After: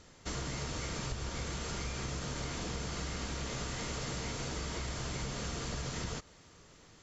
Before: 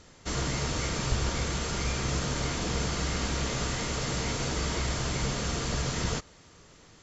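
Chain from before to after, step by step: compression, threshold -31 dBFS, peak gain reduction 9.5 dB; trim -3.5 dB

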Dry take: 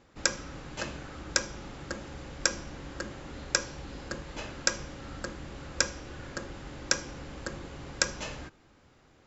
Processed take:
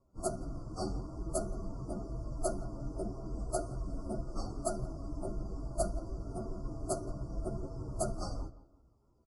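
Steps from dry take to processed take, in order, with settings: frequency axis rescaled in octaves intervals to 124%; Chebyshev band-stop 1.4–4.6 kHz, order 5; on a send: filtered feedback delay 171 ms, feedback 45%, low-pass 3.6 kHz, level -12 dB; on the sum: resampled via 22.05 kHz; spectral contrast expander 1.5:1; trim +6 dB

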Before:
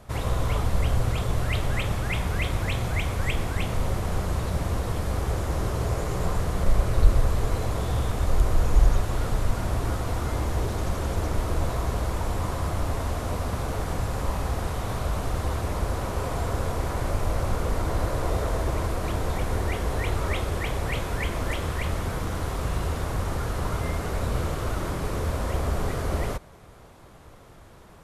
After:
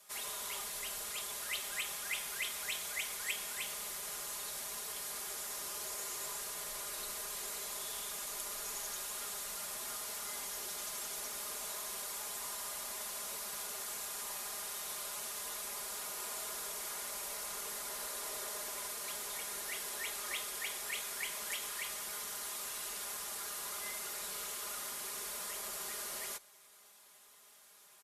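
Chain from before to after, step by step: frequency shift -40 Hz; differentiator; comb 4.9 ms, depth 97%

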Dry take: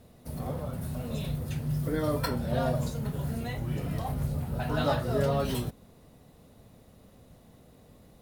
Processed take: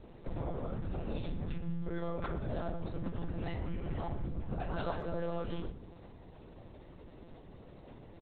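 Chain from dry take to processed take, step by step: treble shelf 3.1 kHz -5 dB; de-hum 58.85 Hz, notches 9; compression 6:1, threshold -37 dBFS, peak gain reduction 13.5 dB; monotone LPC vocoder at 8 kHz 170 Hz; speakerphone echo 120 ms, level -14 dB; trim +3.5 dB

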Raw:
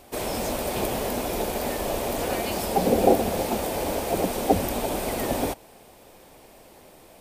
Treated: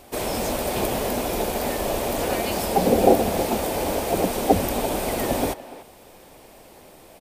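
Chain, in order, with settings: speakerphone echo 290 ms, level -15 dB; trim +2.5 dB

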